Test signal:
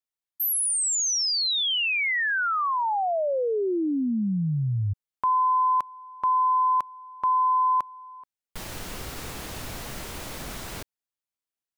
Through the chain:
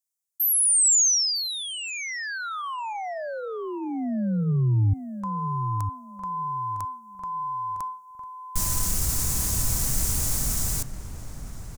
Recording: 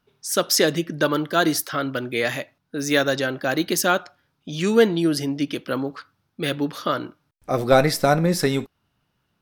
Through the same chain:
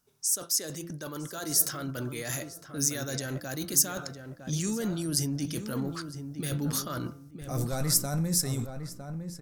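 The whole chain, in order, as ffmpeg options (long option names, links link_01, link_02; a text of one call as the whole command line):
ffmpeg -i in.wav -filter_complex "[0:a]bandreject=frequency=170.5:width_type=h:width=4,bandreject=frequency=341:width_type=h:width=4,bandreject=frequency=511.5:width_type=h:width=4,bandreject=frequency=682:width_type=h:width=4,bandreject=frequency=852.5:width_type=h:width=4,bandreject=frequency=1023:width_type=h:width=4,bandreject=frequency=1193.5:width_type=h:width=4,bandreject=frequency=1364:width_type=h:width=4,bandreject=frequency=1534.5:width_type=h:width=4,areverse,acompressor=threshold=-30dB:ratio=4:attack=0.76:release=74:knee=1:detection=rms,areverse,highshelf=frequency=4800:width_type=q:width=1.5:gain=14,dynaudnorm=framelen=270:gausssize=9:maxgain=7.5dB,asubboost=boost=4.5:cutoff=180,asplit=2[link_01][link_02];[link_02]adelay=957,lowpass=frequency=1600:poles=1,volume=-8dB,asplit=2[link_03][link_04];[link_04]adelay=957,lowpass=frequency=1600:poles=1,volume=0.28,asplit=2[link_05][link_06];[link_06]adelay=957,lowpass=frequency=1600:poles=1,volume=0.28[link_07];[link_03][link_05][link_07]amix=inputs=3:normalize=0[link_08];[link_01][link_08]amix=inputs=2:normalize=0,volume=-6.5dB" out.wav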